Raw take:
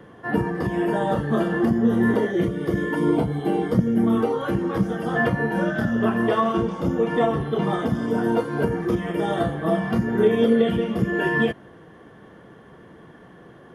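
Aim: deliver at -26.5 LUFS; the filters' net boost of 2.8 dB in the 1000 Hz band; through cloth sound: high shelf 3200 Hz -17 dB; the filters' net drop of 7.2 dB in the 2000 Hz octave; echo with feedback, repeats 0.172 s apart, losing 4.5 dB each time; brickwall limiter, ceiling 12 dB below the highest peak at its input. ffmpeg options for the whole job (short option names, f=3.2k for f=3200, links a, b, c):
-af "equalizer=f=1k:t=o:g=7,equalizer=f=2k:t=o:g=-6.5,alimiter=limit=-18dB:level=0:latency=1,highshelf=f=3.2k:g=-17,aecho=1:1:172|344|516|688|860|1032|1204|1376|1548:0.596|0.357|0.214|0.129|0.0772|0.0463|0.0278|0.0167|0.01,volume=-1dB"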